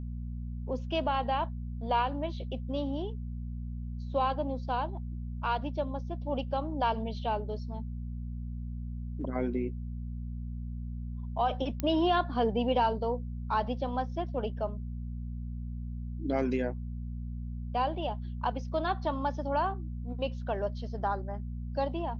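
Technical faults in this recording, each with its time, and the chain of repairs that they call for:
hum 60 Hz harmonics 4 -37 dBFS
11.8 pop -17 dBFS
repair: de-click; de-hum 60 Hz, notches 4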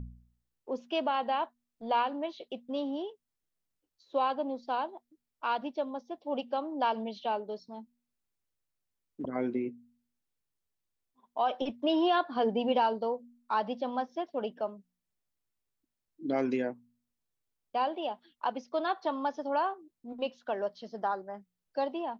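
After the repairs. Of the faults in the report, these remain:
none

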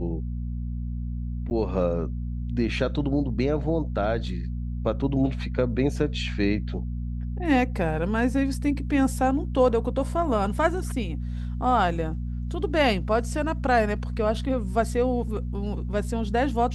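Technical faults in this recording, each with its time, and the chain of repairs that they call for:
hum 60 Hz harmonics 4 -30 dBFS
1.5–1.51 gap 9.7 ms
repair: de-hum 60 Hz, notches 4; interpolate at 1.5, 9.7 ms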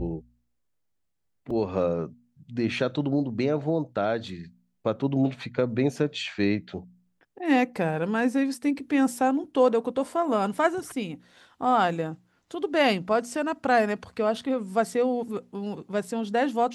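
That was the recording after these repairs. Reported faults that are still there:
none

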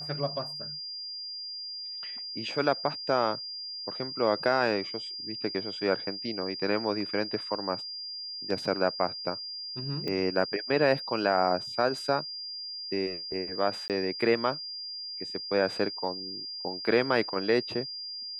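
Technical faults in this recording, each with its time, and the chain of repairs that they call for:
tone 4800 Hz -36 dBFS
10.08 pop -21 dBFS
13.88–13.9 gap 18 ms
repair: de-click; notch 4800 Hz, Q 30; interpolate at 13.88, 18 ms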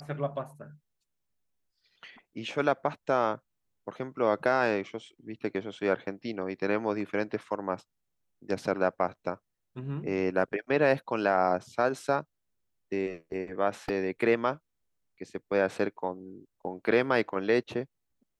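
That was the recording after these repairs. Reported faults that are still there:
none

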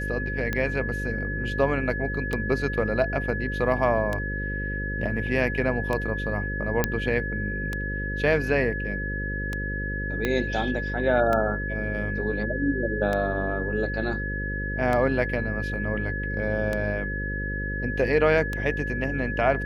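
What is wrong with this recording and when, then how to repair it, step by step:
buzz 50 Hz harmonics 11 -31 dBFS
tick 33 1/3 rpm -14 dBFS
tone 1700 Hz -31 dBFS
6.84 pop -6 dBFS
10.25 pop -12 dBFS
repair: de-click; notch 1700 Hz, Q 30; de-hum 50 Hz, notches 11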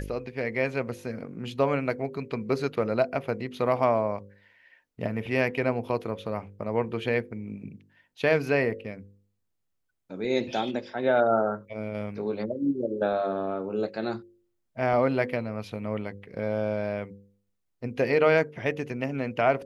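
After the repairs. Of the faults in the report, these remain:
10.25 pop

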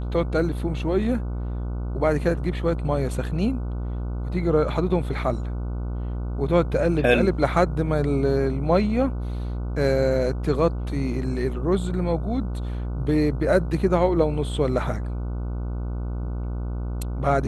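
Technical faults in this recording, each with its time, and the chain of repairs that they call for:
buzz 60 Hz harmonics 25 -28 dBFS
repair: de-hum 60 Hz, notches 25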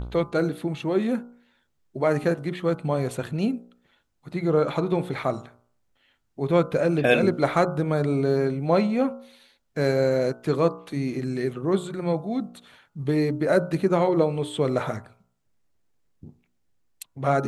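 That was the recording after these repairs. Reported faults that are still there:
none

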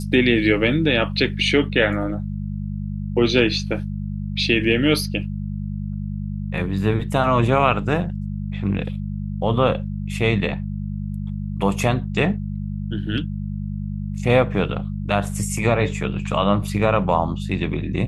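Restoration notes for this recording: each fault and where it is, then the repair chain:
hum 50 Hz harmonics 4 -27 dBFS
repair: de-hum 50 Hz, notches 4

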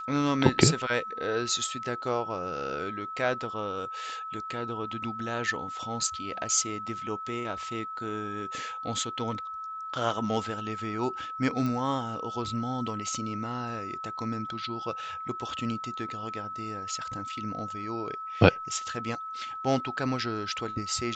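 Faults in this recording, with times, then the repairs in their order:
tone 1300 Hz -35 dBFS
11.66 pop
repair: de-click; notch 1300 Hz, Q 30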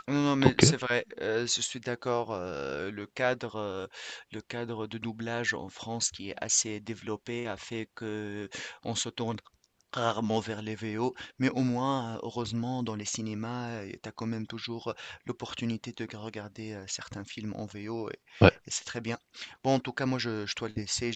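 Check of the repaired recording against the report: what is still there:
none

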